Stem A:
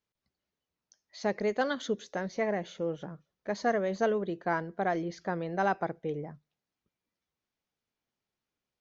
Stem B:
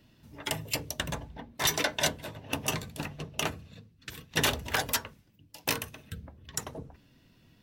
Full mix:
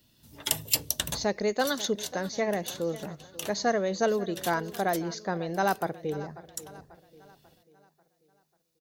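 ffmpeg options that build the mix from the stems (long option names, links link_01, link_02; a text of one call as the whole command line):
ffmpeg -i stem1.wav -i stem2.wav -filter_complex "[0:a]bandreject=frequency=3200:width=9,volume=2dB,asplit=3[link_01][link_02][link_03];[link_02]volume=-17dB[link_04];[1:a]dynaudnorm=framelen=130:gausssize=3:maxgain=4dB,volume=-6.5dB[link_05];[link_03]apad=whole_len=336431[link_06];[link_05][link_06]sidechaincompress=threshold=-40dB:ratio=8:attack=16:release=1480[link_07];[link_04]aecho=0:1:541|1082|1623|2164|2705|3246:1|0.45|0.202|0.0911|0.041|0.0185[link_08];[link_01][link_07][link_08]amix=inputs=3:normalize=0,aexciter=amount=3.3:drive=4.4:freq=3200" out.wav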